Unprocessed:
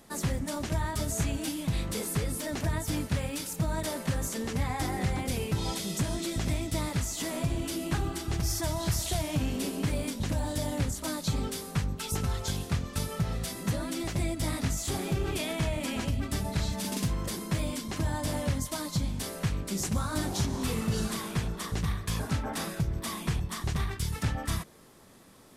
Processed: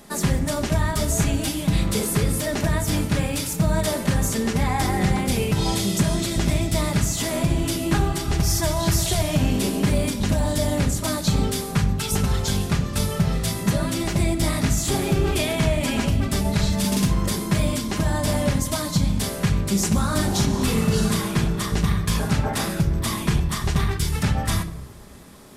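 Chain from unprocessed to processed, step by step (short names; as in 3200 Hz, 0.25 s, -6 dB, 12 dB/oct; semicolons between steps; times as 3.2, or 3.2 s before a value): shoebox room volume 2300 m³, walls furnished, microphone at 1.3 m; gain +8 dB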